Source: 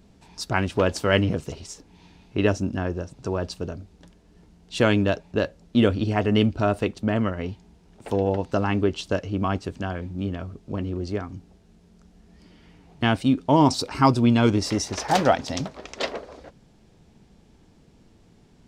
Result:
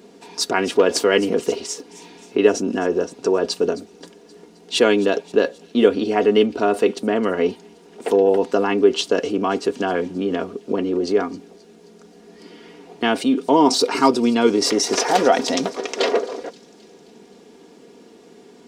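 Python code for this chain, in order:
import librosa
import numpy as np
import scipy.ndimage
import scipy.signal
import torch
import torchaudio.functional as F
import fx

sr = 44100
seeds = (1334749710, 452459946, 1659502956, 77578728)

p1 = fx.over_compress(x, sr, threshold_db=-30.0, ratio=-1.0)
p2 = x + F.gain(torch.from_numpy(p1), 0.0).numpy()
p3 = scipy.signal.sosfilt(scipy.signal.butter(2, 300.0, 'highpass', fs=sr, output='sos'), p2)
p4 = fx.peak_eq(p3, sr, hz=380.0, db=12.5, octaves=0.47)
p5 = p4 + 0.54 * np.pad(p4, (int(4.2 * sr / 1000.0), 0))[:len(p4)]
y = fx.echo_wet_highpass(p5, sr, ms=264, feedback_pct=57, hz=5000.0, wet_db=-15.0)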